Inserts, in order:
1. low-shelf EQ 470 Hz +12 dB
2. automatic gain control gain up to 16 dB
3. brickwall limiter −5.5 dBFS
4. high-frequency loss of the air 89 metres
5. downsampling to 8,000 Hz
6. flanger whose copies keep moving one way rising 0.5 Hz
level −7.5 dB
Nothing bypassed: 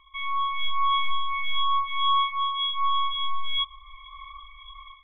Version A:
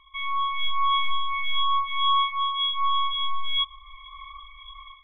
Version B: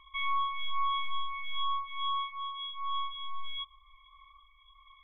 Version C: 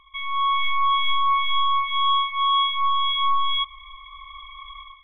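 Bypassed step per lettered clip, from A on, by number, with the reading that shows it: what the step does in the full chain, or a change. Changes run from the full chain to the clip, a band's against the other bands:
4, change in integrated loudness +1.0 LU
2, change in momentary loudness spread −13 LU
6, change in crest factor −2.0 dB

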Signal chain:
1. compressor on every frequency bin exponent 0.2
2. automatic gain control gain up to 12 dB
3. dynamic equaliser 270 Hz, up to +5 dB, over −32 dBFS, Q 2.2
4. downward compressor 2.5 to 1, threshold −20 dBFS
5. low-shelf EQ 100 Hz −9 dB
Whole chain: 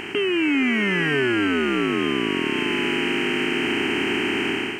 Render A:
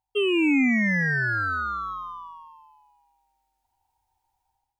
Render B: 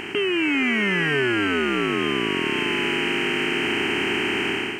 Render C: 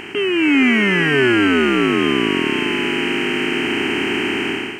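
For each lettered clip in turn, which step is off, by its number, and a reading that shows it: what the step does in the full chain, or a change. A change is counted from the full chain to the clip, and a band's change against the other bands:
1, 4 kHz band −8.5 dB
3, 250 Hz band −3.0 dB
4, average gain reduction 4.0 dB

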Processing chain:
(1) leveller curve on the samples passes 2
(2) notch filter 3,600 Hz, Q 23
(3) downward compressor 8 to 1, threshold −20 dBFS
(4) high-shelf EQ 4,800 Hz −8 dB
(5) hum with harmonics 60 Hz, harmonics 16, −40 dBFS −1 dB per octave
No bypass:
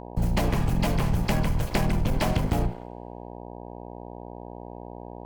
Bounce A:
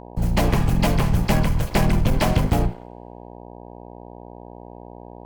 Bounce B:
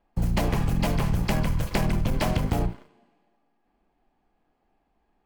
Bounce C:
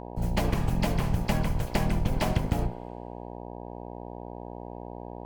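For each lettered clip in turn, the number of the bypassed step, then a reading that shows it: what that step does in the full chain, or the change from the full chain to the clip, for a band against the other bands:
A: 3, average gain reduction 4.5 dB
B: 5, change in momentary loudness spread −13 LU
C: 1, change in crest factor +4.5 dB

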